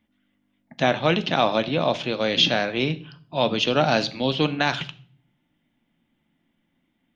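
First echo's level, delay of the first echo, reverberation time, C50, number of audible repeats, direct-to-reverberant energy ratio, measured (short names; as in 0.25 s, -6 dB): none, none, 0.50 s, 17.5 dB, none, 11.0 dB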